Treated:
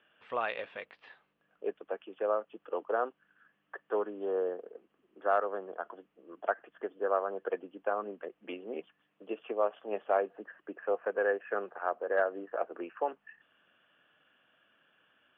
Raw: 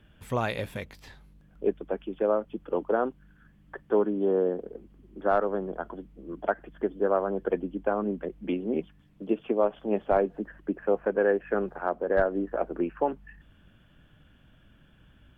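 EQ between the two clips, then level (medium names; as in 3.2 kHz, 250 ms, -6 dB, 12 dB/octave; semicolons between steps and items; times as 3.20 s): cabinet simulation 450–3500 Hz, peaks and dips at 480 Hz +4 dB, 700 Hz +4 dB, 1.2 kHz +7 dB, 1.7 kHz +5 dB, 2.8 kHz +7 dB; -7.0 dB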